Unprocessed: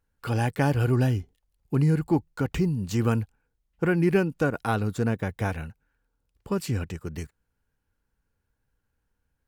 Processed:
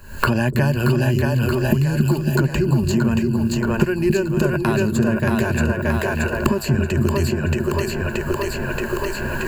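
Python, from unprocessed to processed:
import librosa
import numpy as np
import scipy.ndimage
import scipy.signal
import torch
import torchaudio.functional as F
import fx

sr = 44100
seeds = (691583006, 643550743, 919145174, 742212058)

y = fx.recorder_agc(x, sr, target_db=-15.5, rise_db_per_s=75.0, max_gain_db=30)
y = fx.ripple_eq(y, sr, per_octave=1.4, db=13)
y = fx.echo_split(y, sr, split_hz=360.0, low_ms=275, high_ms=627, feedback_pct=52, wet_db=-3.0)
y = fx.band_squash(y, sr, depth_pct=100)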